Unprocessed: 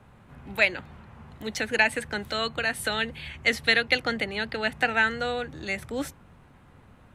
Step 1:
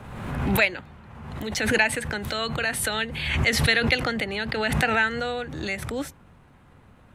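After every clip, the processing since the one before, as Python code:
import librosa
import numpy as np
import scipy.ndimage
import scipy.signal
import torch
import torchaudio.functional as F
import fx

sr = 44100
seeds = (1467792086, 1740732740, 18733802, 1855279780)

y = fx.pre_swell(x, sr, db_per_s=41.0)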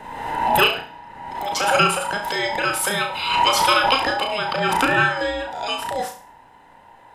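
y = fx.band_invert(x, sr, width_hz=1000)
y = fx.room_flutter(y, sr, wall_m=5.9, rt60_s=0.4)
y = y * 10.0 ** (3.0 / 20.0)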